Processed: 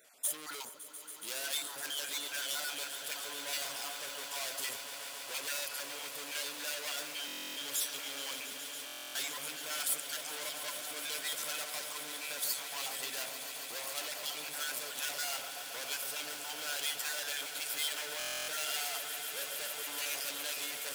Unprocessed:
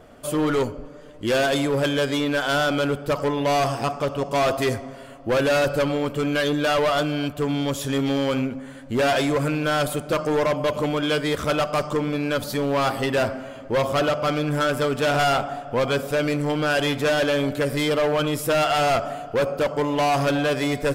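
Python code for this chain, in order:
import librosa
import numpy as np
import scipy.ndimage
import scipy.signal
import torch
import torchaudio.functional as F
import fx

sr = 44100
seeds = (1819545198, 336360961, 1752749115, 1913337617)

p1 = fx.spec_dropout(x, sr, seeds[0], share_pct=31)
p2 = fx.notch(p1, sr, hz=1200.0, q=8.3)
p3 = fx.schmitt(p2, sr, flips_db=-28.0)
p4 = p2 + (p3 * 10.0 ** (-11.0 / 20.0))
p5 = fx.low_shelf(p4, sr, hz=200.0, db=-7.5)
p6 = 10.0 ** (-28.5 / 20.0) * np.tanh(p5 / 10.0 ** (-28.5 / 20.0))
p7 = np.diff(p6, prepend=0.0)
p8 = fx.echo_swell(p7, sr, ms=140, loudest=8, wet_db=-14.0)
p9 = fx.buffer_glitch(p8, sr, at_s=(7.26, 8.85, 18.18), block=1024, repeats=12)
y = p9 * 10.0 ** (4.0 / 20.0)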